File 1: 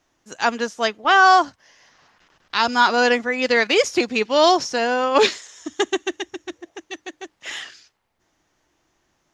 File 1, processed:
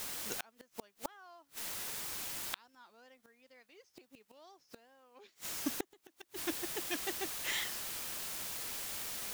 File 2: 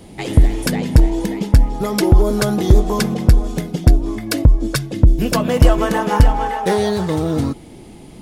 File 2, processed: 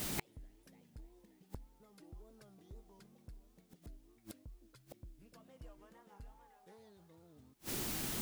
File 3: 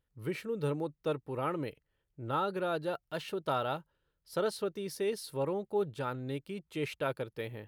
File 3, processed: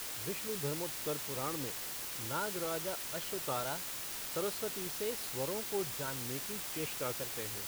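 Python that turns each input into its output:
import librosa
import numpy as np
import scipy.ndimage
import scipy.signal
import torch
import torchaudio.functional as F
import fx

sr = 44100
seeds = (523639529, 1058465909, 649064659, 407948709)

y = fx.wow_flutter(x, sr, seeds[0], rate_hz=2.1, depth_cents=130.0)
y = fx.quant_dither(y, sr, seeds[1], bits=6, dither='triangular')
y = fx.gate_flip(y, sr, shuts_db=-18.0, range_db=-38)
y = y * librosa.db_to_amplitude(-5.5)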